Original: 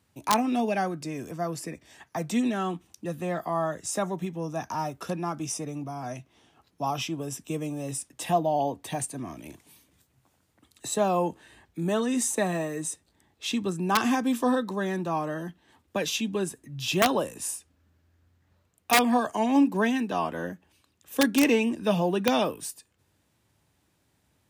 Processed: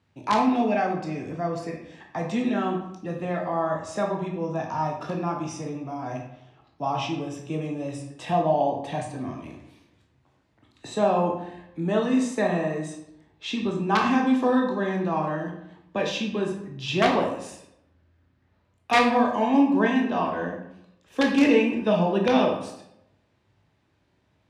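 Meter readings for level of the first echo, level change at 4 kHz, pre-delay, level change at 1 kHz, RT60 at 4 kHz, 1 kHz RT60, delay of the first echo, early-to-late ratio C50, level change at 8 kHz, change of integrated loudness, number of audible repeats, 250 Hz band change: no echo audible, −0.5 dB, 16 ms, +3.0 dB, 0.50 s, 0.75 s, no echo audible, 5.0 dB, −11.0 dB, +2.5 dB, no echo audible, +3.0 dB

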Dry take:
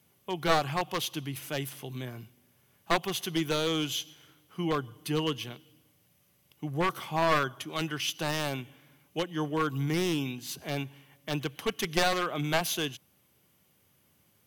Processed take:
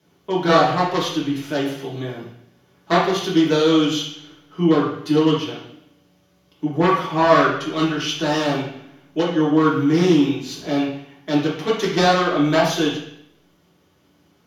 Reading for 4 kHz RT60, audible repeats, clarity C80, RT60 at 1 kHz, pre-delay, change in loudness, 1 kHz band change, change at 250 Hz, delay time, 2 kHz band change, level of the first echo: 0.70 s, no echo audible, 7.0 dB, 0.70 s, 3 ms, +12.0 dB, +11.0 dB, +15.0 dB, no echo audible, +8.5 dB, no echo audible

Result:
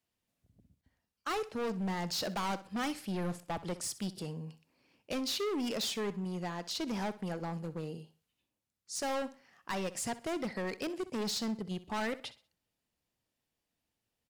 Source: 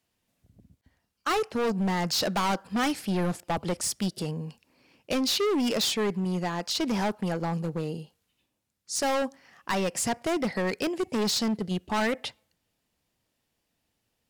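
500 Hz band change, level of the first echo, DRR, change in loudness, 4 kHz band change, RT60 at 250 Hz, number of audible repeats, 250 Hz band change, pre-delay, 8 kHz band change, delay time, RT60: −8.5 dB, −16.0 dB, no reverb audible, −8.5 dB, −8.5 dB, no reverb audible, 2, −8.5 dB, no reverb audible, −8.5 dB, 63 ms, no reverb audible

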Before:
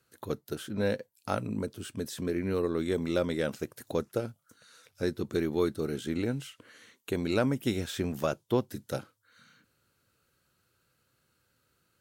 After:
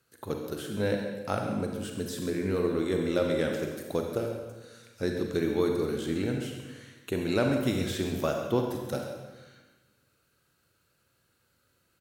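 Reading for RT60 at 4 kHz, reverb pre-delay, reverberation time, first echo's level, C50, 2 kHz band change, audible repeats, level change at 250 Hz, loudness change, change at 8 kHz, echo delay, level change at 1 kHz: 1.1 s, 33 ms, 1.2 s, −12.5 dB, 3.0 dB, +2.0 dB, 1, +2.0 dB, +2.0 dB, +2.0 dB, 135 ms, +2.0 dB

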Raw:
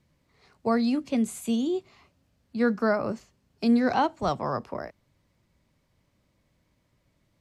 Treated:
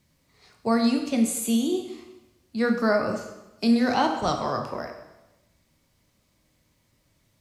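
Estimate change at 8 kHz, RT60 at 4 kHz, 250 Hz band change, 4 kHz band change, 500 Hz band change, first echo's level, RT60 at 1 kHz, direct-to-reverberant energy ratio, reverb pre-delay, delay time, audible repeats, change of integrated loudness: can't be measured, 0.90 s, +2.0 dB, +6.5 dB, +1.5 dB, no echo audible, 1.0 s, 3.5 dB, 8 ms, no echo audible, no echo audible, +2.0 dB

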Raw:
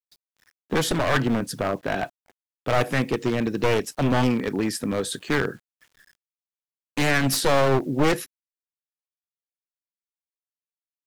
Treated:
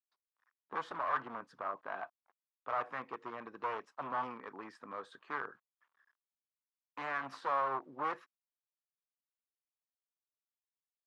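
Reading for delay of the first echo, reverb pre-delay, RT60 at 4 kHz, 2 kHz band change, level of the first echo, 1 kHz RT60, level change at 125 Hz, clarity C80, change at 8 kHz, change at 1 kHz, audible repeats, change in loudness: no echo audible, no reverb audible, no reverb audible, −15.5 dB, no echo audible, no reverb audible, −33.5 dB, no reverb audible, below −35 dB, −8.0 dB, no echo audible, −16.0 dB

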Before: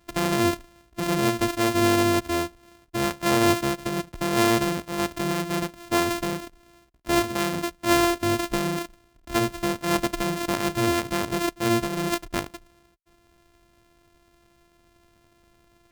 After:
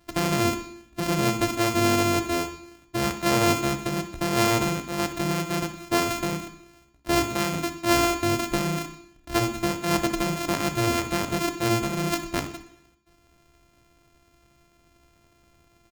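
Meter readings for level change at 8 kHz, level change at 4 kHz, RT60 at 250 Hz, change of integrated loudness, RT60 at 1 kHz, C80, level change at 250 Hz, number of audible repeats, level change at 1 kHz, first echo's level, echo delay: +1.0 dB, +0.5 dB, 0.70 s, −0.5 dB, 0.65 s, 14.5 dB, −1.0 dB, 2, −0.5 dB, −14.5 dB, 63 ms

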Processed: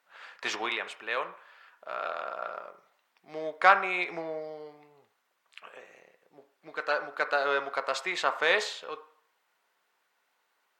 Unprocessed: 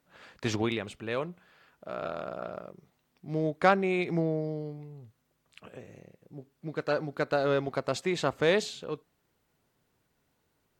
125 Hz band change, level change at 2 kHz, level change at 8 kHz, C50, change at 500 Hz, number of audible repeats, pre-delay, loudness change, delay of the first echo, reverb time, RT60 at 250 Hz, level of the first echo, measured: −23.5 dB, +6.0 dB, −0.5 dB, 13.5 dB, −4.0 dB, no echo audible, 3 ms, +1.0 dB, no echo audible, 0.65 s, 0.50 s, no echo audible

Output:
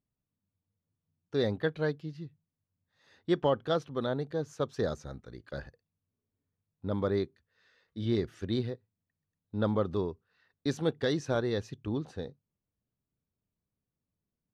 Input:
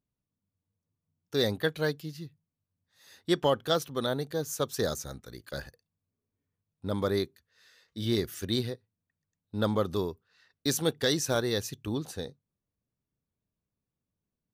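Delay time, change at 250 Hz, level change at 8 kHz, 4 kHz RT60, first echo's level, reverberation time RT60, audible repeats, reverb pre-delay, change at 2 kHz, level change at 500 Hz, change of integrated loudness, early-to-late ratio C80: no echo audible, −0.5 dB, below −15 dB, no reverb audible, no echo audible, no reverb audible, no echo audible, no reverb audible, −4.0 dB, −1.0 dB, −2.0 dB, no reverb audible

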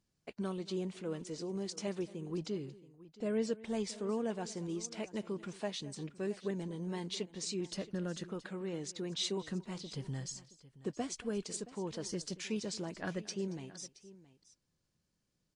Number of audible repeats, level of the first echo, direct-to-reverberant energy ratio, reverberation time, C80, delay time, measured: 2, −20.0 dB, no reverb audible, no reverb audible, no reverb audible, 228 ms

